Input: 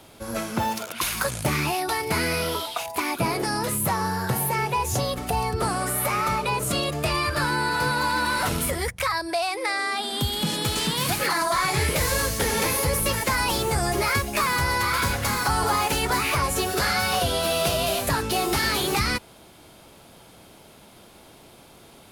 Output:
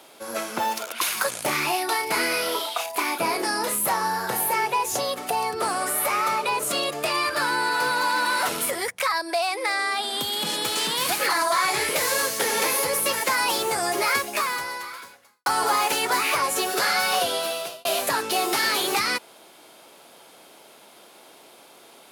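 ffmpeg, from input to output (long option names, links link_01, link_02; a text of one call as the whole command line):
ffmpeg -i in.wav -filter_complex "[0:a]asettb=1/sr,asplit=3[link_01][link_02][link_03];[link_01]atrim=end=1.444[link_04];[link_02]atrim=start=1.44:end=4.66,asetpts=PTS-STARTPTS,afade=type=in:duration=0.004:curve=qsin,afade=type=out:start_time=3.216:duration=0.004:curve=qsin,asplit=2[link_05][link_06];[link_06]adelay=33,volume=-8dB[link_07];[link_05][link_07]amix=inputs=2:normalize=0,atrim=end_sample=142002[link_08];[link_03]atrim=start=4.656[link_09];[link_04][link_08]acrossfade=duration=0.004:curve1=hsin:curve2=qsin[link_10];[link_10][link_09]acrossfade=duration=0.004:curve1=qsin:curve2=hsin,asettb=1/sr,asplit=3[link_11][link_12][link_13];[link_11]atrim=end=5.444[link_14];[link_12]atrim=start=5.44:end=11.02,asetpts=PTS-STARTPTS,afade=type=in:duration=0.004:curve=qsin,afade=type=out:start_time=5.576:duration=0.004:curve=qsin,asoftclip=type=hard:threshold=-17dB[link_15];[link_13]atrim=start=11.016[link_16];[link_14][link_15]acrossfade=duration=0.004:curve1=hsin:curve2=qsin[link_17];[link_17][link_16]acrossfade=duration=0.004:curve1=qsin:curve2=hsin,asplit=3[link_18][link_19][link_20];[link_18]atrim=end=15.46,asetpts=PTS-STARTPTS,afade=type=out:start_time=14.23:duration=1.23:curve=qua[link_21];[link_19]atrim=start=15.46:end=17.85,asetpts=PTS-STARTPTS,afade=type=in:duration=0.004:curve=hsin,afade=type=out:start_time=1.78:duration=0.61[link_22];[link_20]atrim=start=17.85,asetpts=PTS-STARTPTS,afade=type=in:duration=0.004:curve=hsin[link_23];[link_21][link_22][link_23]concat=n=3:v=0:a=1,highpass=380,volume=1.5dB" out.wav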